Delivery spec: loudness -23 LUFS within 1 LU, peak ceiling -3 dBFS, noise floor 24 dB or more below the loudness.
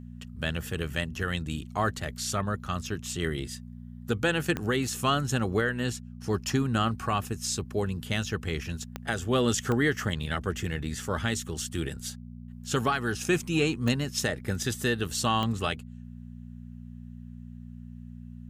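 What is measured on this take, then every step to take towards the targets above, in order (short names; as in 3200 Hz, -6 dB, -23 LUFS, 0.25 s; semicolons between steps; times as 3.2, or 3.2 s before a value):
clicks 5; hum 60 Hz; harmonics up to 240 Hz; hum level -40 dBFS; loudness -29.5 LUFS; peak -13.0 dBFS; loudness target -23.0 LUFS
-> de-click; de-hum 60 Hz, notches 4; gain +6.5 dB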